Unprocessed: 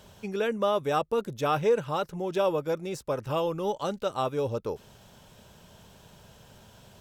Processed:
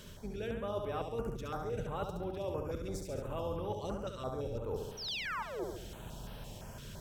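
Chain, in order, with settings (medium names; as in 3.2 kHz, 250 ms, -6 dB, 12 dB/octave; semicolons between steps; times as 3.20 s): octave divider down 2 oct, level -1 dB; painted sound fall, 4.97–5.64 s, 330–6100 Hz -37 dBFS; reverse; compression 8:1, threshold -40 dBFS, peak gain reduction 21 dB; reverse; flutter echo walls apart 11.9 m, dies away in 0.9 s; step-sequenced notch 5.9 Hz 780–7000 Hz; trim +3.5 dB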